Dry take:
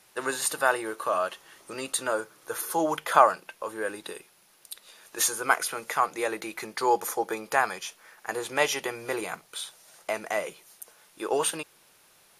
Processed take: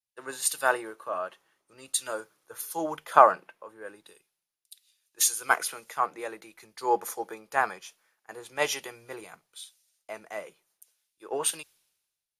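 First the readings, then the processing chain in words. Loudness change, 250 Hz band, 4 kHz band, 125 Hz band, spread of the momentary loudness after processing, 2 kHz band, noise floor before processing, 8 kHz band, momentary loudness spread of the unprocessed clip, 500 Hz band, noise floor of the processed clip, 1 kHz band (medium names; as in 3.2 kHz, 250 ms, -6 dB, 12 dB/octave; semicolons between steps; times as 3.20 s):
0.0 dB, -6.0 dB, -2.5 dB, -5.5 dB, 22 LU, -2.5 dB, -60 dBFS, +0.5 dB, 18 LU, -2.5 dB, under -85 dBFS, -0.5 dB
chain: three bands expanded up and down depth 100%; trim -7 dB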